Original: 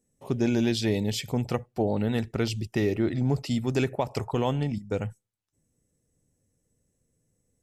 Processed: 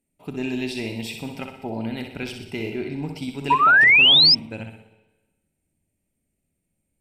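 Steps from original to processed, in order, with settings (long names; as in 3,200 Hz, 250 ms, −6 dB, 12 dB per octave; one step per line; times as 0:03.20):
flutter between parallel walls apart 11.6 metres, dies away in 0.63 s
four-comb reverb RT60 1.3 s, combs from 31 ms, DRR 10.5 dB
wrong playback speed 44.1 kHz file played as 48 kHz
thirty-one-band graphic EQ 125 Hz −8 dB, 500 Hz −10 dB, 2,500 Hz +11 dB, 6,300 Hz −10 dB
sound drawn into the spectrogram rise, 0:03.50–0:04.35, 930–5,300 Hz −10 dBFS
notch filter 1,100 Hz, Q 6.4
level −3 dB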